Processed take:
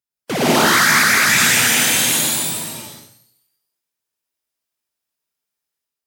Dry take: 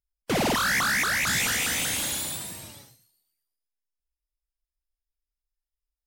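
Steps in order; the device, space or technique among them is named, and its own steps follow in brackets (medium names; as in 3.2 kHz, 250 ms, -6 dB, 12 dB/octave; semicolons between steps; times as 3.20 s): far laptop microphone (reverberation RT60 0.55 s, pre-delay 96 ms, DRR -2.5 dB; high-pass 110 Hz 24 dB/octave; level rider gain up to 6 dB); trim +2 dB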